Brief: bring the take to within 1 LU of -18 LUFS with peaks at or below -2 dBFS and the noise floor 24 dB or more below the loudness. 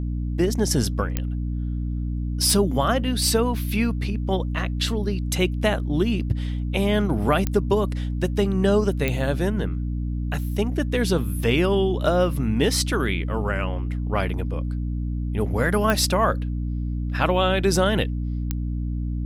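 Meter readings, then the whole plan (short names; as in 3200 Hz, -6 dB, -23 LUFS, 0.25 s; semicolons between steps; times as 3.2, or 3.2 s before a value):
clicks 6; hum 60 Hz; harmonics up to 300 Hz; hum level -24 dBFS; loudness -23.5 LUFS; peak -6.5 dBFS; loudness target -18.0 LUFS
-> de-click; de-hum 60 Hz, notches 5; gain +5.5 dB; limiter -2 dBFS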